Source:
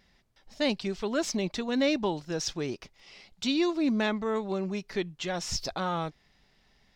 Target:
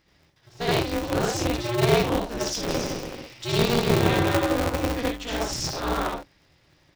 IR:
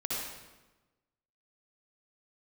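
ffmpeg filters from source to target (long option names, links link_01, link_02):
-filter_complex "[0:a]asplit=3[link_01][link_02][link_03];[link_01]afade=type=out:start_time=2.62:duration=0.02[link_04];[link_02]aecho=1:1:160|280|370|437.5|488.1:0.631|0.398|0.251|0.158|0.1,afade=type=in:start_time=2.62:duration=0.02,afade=type=out:start_time=4.86:duration=0.02[link_05];[link_03]afade=type=in:start_time=4.86:duration=0.02[link_06];[link_04][link_05][link_06]amix=inputs=3:normalize=0[link_07];[1:a]atrim=start_sample=2205,atrim=end_sample=6615[link_08];[link_07][link_08]afir=irnorm=-1:irlink=0,aeval=exprs='val(0)*sgn(sin(2*PI*120*n/s))':channel_layout=same"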